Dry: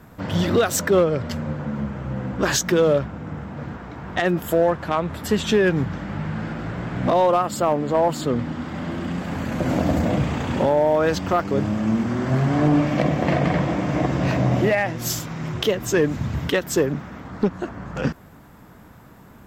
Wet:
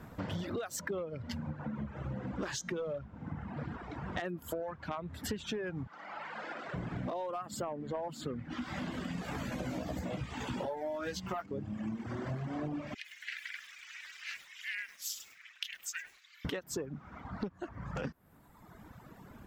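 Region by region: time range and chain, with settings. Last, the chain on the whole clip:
2.16–4.25 LPF 10000 Hz + de-hum 395.1 Hz, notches 29 + hard clip -12 dBFS
5.87–6.74 BPF 550–7700 Hz + flutter echo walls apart 9.7 m, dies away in 0.38 s
8.5–11.46 high shelf 2500 Hz +8.5 dB + doubler 16 ms -2.5 dB
12.94–16.45 steep high-pass 1800 Hz + ring modulator 170 Hz + lo-fi delay 0.102 s, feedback 35%, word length 7-bit, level -9 dB
whole clip: reverb removal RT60 1.4 s; high shelf 7600 Hz -5 dB; compressor 10:1, threshold -32 dBFS; gain -3 dB

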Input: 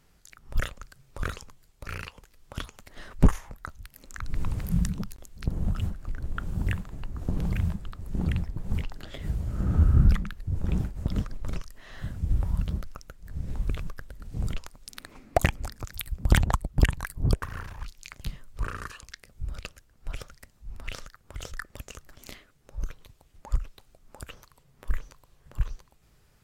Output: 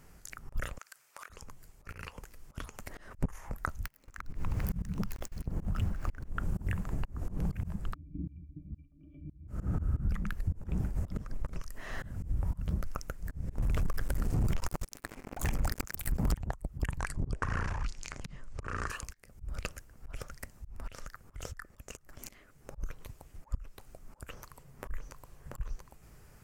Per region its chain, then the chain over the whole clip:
0.78–1.3 HPF 1100 Hz + compressor 10:1, threshold -49 dBFS
3.85–6.29 median filter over 5 samples + gate -46 dBFS, range -21 dB + mismatched tape noise reduction encoder only
7.94–9.48 vocal tract filter i + upward compressor, threshold -49 dBFS + octave resonator D, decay 0.1 s
13.58–16.34 sample leveller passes 5 + compressor 3:1, threshold -25 dBFS
16.99–18.9 LPF 7800 Hz 24 dB/oct + transient shaper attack -8 dB, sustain +4 dB
whole clip: bell 3700 Hz -9.5 dB 0.79 oct; auto swell 0.342 s; compressor 5:1, threshold -34 dBFS; gain +6.5 dB

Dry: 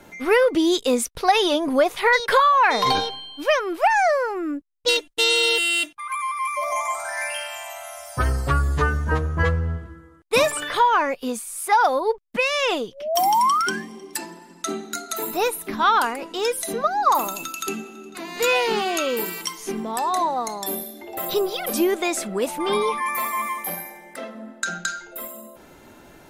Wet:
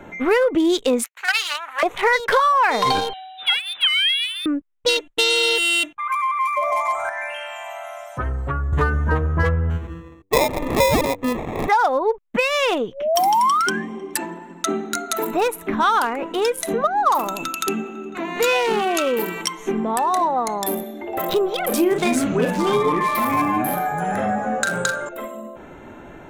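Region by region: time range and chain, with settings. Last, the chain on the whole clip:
1.04–1.83 minimum comb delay 0.43 ms + HPF 1100 Hz 24 dB/oct
3.13–4.46 inverted band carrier 3900 Hz + HPF 1300 Hz 6 dB/oct + air absorption 79 m
7.09–8.73 compressor 2.5:1, threshold -33 dBFS + three-band expander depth 70%
9.7–11.69 sample-rate reducer 1500 Hz + de-hum 96.17 Hz, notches 5
21.68–25.09 doubler 39 ms -6 dB + echoes that change speed 0.22 s, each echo -6 st, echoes 2, each echo -6 dB
whole clip: Wiener smoothing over 9 samples; compressor 2:1, threshold -28 dBFS; gain +8 dB

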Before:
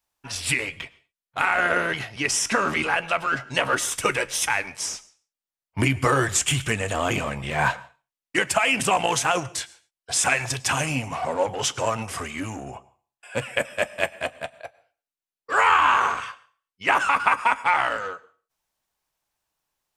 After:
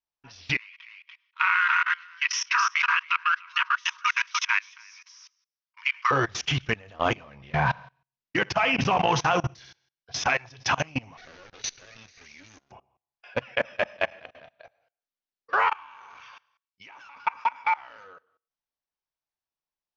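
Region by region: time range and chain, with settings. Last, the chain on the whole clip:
0.57–6.11 dynamic EQ 2600 Hz, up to +4 dB, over -37 dBFS, Q 3.1 + brick-wall FIR high-pass 920 Hz + echo 0.29 s -5.5 dB
7.52–10.27 bell 120 Hz +10 dB 1.6 oct + flutter echo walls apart 11.6 m, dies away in 0.32 s
11.17–12.72 minimum comb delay 0.47 ms + pre-emphasis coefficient 0.9 + sample leveller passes 2
15.68–18.04 high shelf 2700 Hz +11.5 dB + compressor 2.5:1, threshold -32 dBFS + small resonant body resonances 900/2300 Hz, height 10 dB, ringing for 30 ms
whole clip: level quantiser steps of 24 dB; dynamic EQ 980 Hz, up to +4 dB, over -36 dBFS, Q 1; steep low-pass 6100 Hz 96 dB/oct

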